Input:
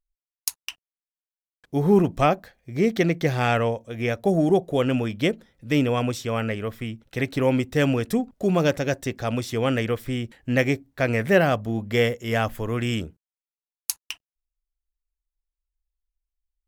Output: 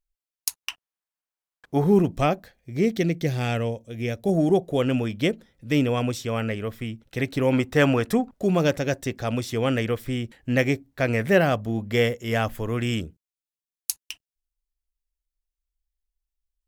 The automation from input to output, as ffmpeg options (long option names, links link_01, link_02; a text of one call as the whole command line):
ffmpeg -i in.wav -af "asetnsamples=nb_out_samples=441:pad=0,asendcmd='0.63 equalizer g 7;1.84 equalizer g -4.5;2.95 equalizer g -11;4.29 equalizer g -2.5;7.53 equalizer g 6.5;8.37 equalizer g -1.5;13.01 equalizer g -10',equalizer=frequency=1100:width_type=o:width=1.9:gain=-1.5" out.wav